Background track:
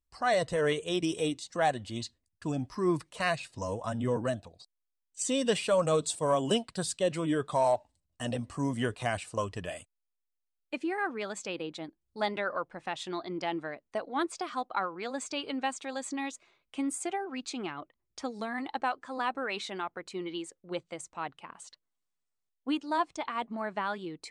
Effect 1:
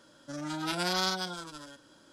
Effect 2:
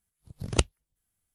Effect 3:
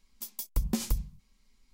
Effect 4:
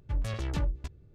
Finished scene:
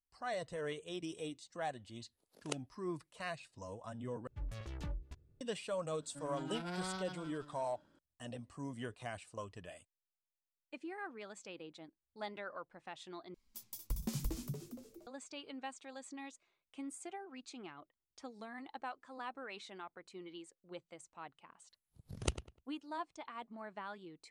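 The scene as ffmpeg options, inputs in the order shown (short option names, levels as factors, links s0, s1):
-filter_complex "[2:a]asplit=2[s0][s1];[0:a]volume=0.224[s2];[s0]highpass=f=330:w=0.5412,highpass=f=330:w=1.3066[s3];[1:a]bass=f=250:g=7,treble=f=4000:g=-14[s4];[3:a]asplit=6[s5][s6][s7][s8][s9][s10];[s6]adelay=233,afreqshift=100,volume=0.562[s11];[s7]adelay=466,afreqshift=200,volume=0.237[s12];[s8]adelay=699,afreqshift=300,volume=0.0989[s13];[s9]adelay=932,afreqshift=400,volume=0.0417[s14];[s10]adelay=1165,afreqshift=500,volume=0.0176[s15];[s5][s11][s12][s13][s14][s15]amix=inputs=6:normalize=0[s16];[s1]asplit=2[s17][s18];[s18]adelay=100,lowpass=f=3900:p=1,volume=0.251,asplit=2[s19][s20];[s20]adelay=100,lowpass=f=3900:p=1,volume=0.24,asplit=2[s21][s22];[s22]adelay=100,lowpass=f=3900:p=1,volume=0.24[s23];[s17][s19][s21][s23]amix=inputs=4:normalize=0[s24];[s2]asplit=3[s25][s26][s27];[s25]atrim=end=4.274[s28];[4:a]atrim=end=1.14,asetpts=PTS-STARTPTS,volume=0.237[s29];[s26]atrim=start=5.406:end=13.344[s30];[s16]atrim=end=1.73,asetpts=PTS-STARTPTS,volume=0.316[s31];[s27]atrim=start=15.066[s32];[s3]atrim=end=1.34,asetpts=PTS-STARTPTS,volume=0.178,afade=t=in:d=0.004:c=hsin,afade=t=out:st=1.336:d=0.004:c=hsin,adelay=1930[s33];[s4]atrim=end=2.12,asetpts=PTS-STARTPTS,volume=0.251,afade=t=in:d=0.004:c=hsin,afade=t=out:st=2.116:d=0.004:c=hsin,adelay=5870[s34];[s24]atrim=end=1.34,asetpts=PTS-STARTPTS,volume=0.251,afade=t=in:d=0.004:c=hsin,afade=t=out:st=1.336:d=0.004:c=hsin,adelay=21690[s35];[s28][s29]acrossfade=d=0.004:c1=hsin:c2=hsin[s36];[s36][s30]acrossfade=d=0.004:c1=hsin:c2=hsin[s37];[s37][s31]acrossfade=d=0.004:c1=hsin:c2=hsin[s38];[s38][s32]acrossfade=d=0.004:c1=hsin:c2=hsin[s39];[s39][s33][s34][s35]amix=inputs=4:normalize=0"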